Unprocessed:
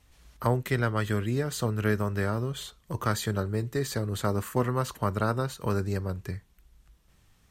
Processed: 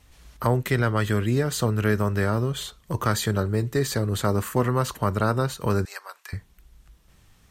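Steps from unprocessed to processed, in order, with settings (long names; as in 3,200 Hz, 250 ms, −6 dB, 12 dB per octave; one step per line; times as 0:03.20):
0:05.85–0:06.33: high-pass filter 880 Hz 24 dB per octave
in parallel at −0.5 dB: brickwall limiter −19 dBFS, peak gain reduction 8.5 dB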